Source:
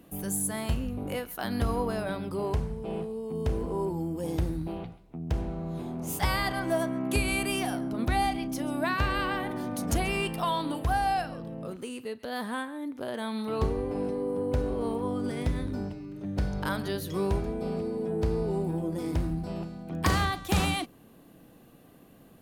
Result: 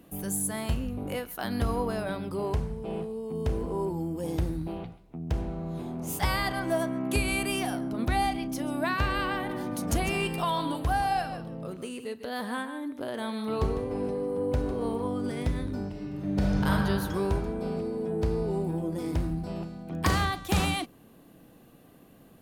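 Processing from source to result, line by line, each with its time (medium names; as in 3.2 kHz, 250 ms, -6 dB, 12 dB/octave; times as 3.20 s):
9.34–15.08 s: delay 152 ms -10.5 dB
15.89–16.70 s: reverb throw, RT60 2.3 s, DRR -4 dB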